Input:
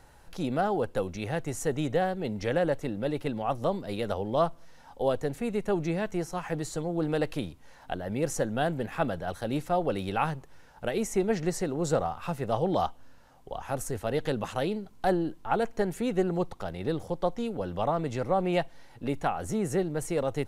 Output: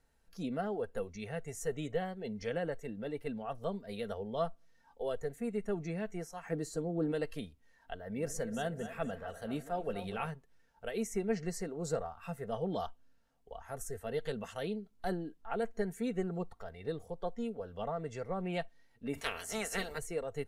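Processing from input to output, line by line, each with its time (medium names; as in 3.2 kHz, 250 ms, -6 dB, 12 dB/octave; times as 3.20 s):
6.45–7.12 s: peaking EQ 290 Hz +7 dB 1.6 oct
7.98–10.27 s: two-band feedback delay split 410 Hz, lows 113 ms, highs 245 ms, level -10.5 dB
19.13–19.97 s: spectral peaks clipped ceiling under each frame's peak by 26 dB
whole clip: spectral noise reduction 10 dB; peaking EQ 930 Hz -6.5 dB 0.87 oct; comb 4.4 ms, depth 42%; trim -7.5 dB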